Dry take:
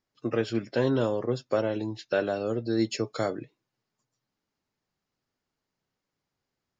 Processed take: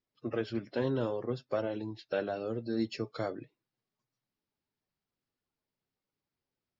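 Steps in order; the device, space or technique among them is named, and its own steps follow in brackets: clip after many re-uploads (LPF 5300 Hz 24 dB/oct; bin magnitudes rounded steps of 15 dB); gain -6 dB

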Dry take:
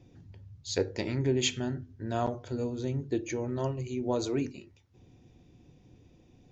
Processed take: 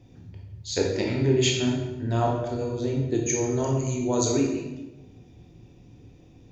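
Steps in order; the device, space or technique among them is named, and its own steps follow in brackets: 3.14–4.25 bell 6700 Hz +14 dB 0.5 oct; bathroom (reverb RT60 1.1 s, pre-delay 16 ms, DRR -1 dB); gain +2.5 dB

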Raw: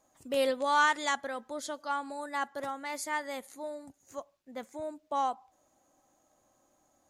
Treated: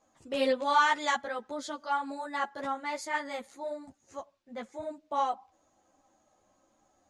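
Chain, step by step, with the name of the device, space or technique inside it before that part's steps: string-machine ensemble chorus (ensemble effect; LPF 6200 Hz 12 dB/oct); gain +4.5 dB

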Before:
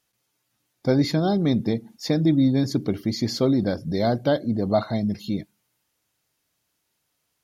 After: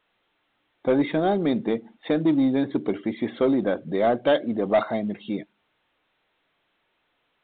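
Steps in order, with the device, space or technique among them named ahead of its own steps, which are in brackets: 4.24–4.83 dynamic EQ 3000 Hz, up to +7 dB, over -44 dBFS, Q 0.82; telephone (BPF 320–3100 Hz; soft clip -16.5 dBFS, distortion -16 dB; gain +4.5 dB; A-law 64 kbps 8000 Hz)

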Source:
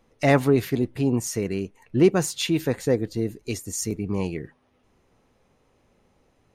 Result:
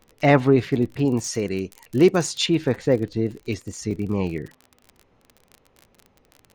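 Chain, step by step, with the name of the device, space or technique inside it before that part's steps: lo-fi chain (LPF 4100 Hz 12 dB/oct; wow and flutter; crackle 43/s -35 dBFS); 1.05–2.46 tone controls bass -3 dB, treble +10 dB; gain +2.5 dB

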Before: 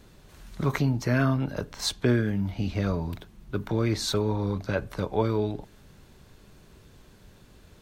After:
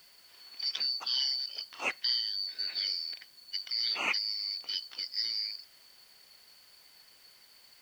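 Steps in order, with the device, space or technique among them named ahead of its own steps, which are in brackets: split-band scrambled radio (four-band scrambler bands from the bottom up 4321; BPF 400–3000 Hz; white noise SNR 27 dB); 2.58–4.19 dynamic EQ 2100 Hz, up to +4 dB, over -45 dBFS, Q 0.82

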